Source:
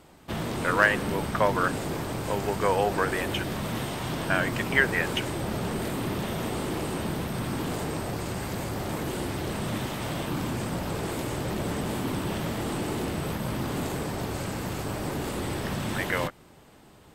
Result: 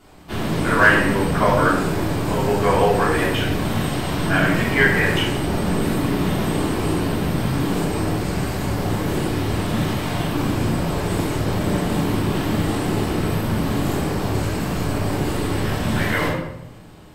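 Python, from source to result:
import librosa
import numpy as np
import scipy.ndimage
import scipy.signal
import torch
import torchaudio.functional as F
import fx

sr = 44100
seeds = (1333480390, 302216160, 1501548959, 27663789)

y = fx.room_shoebox(x, sr, seeds[0], volume_m3=260.0, walls='mixed', distance_m=3.2)
y = F.gain(torch.from_numpy(y), -2.5).numpy()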